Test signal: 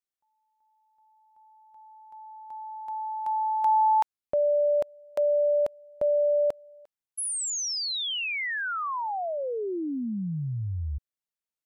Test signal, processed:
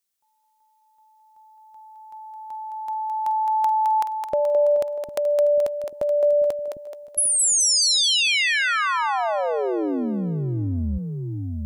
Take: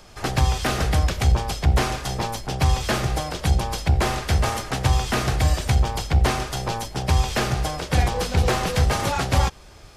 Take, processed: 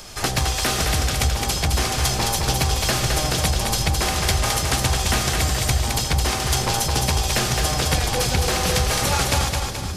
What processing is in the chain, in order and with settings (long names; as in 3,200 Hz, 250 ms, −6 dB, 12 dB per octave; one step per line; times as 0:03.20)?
high-shelf EQ 3,300 Hz +11 dB
downward compressor, threshold −24 dBFS
on a send: echo with a time of its own for lows and highs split 330 Hz, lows 752 ms, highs 214 ms, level −4 dB
on the sum: level +5 dB